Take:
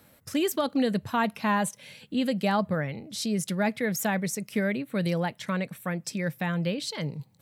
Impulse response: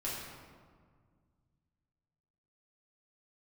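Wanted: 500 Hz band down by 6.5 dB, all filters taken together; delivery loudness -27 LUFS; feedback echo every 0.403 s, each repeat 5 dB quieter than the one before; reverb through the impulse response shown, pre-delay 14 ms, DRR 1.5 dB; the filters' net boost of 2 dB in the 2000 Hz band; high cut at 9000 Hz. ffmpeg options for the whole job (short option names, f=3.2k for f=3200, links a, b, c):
-filter_complex "[0:a]lowpass=9k,equalizer=f=500:t=o:g=-8.5,equalizer=f=2k:t=o:g=3,aecho=1:1:403|806|1209|1612|2015|2418|2821:0.562|0.315|0.176|0.0988|0.0553|0.031|0.0173,asplit=2[a][b];[1:a]atrim=start_sample=2205,adelay=14[c];[b][c]afir=irnorm=-1:irlink=0,volume=-4.5dB[d];[a][d]amix=inputs=2:normalize=0,volume=-1dB"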